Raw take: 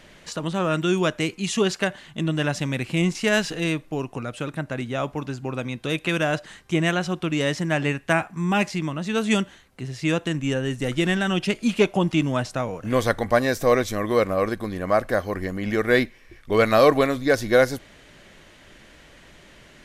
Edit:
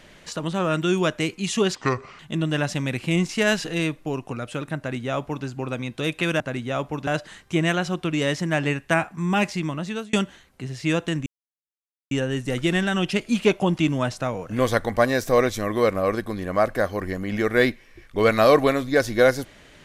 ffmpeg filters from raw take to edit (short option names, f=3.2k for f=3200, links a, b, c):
-filter_complex "[0:a]asplit=7[a][b][c][d][e][f][g];[a]atrim=end=1.754[h];[b]atrim=start=1.75:end=2.05,asetpts=PTS-STARTPTS,asetrate=29988,aresample=44100[i];[c]atrim=start=2.046:end=6.262[j];[d]atrim=start=4.638:end=5.312[k];[e]atrim=start=6.258:end=9.32,asetpts=PTS-STARTPTS,afade=t=out:st=2.742:d=0.32[l];[f]atrim=start=9.32:end=10.45,asetpts=PTS-STARTPTS,afade=t=in:d=0.004:c=hsin,afade=t=out:st=1.126:d=0.004:c=hsin,apad=pad_dur=0.85[m];[g]atrim=start=10.45,asetpts=PTS-STARTPTS,afade=t=in:d=0.004:c=hsin[n];[h][i]acrossfade=d=0.004:c1=hsin:c2=hsin[o];[o][j]acrossfade=d=0.004:c1=hsin:c2=hsin[p];[p][k]acrossfade=d=0.004:c1=hsin:c2=hsin[q];[l][m][n]concat=n=3:v=0:a=1[r];[q][r]acrossfade=d=0.004:c1=hsin:c2=hsin"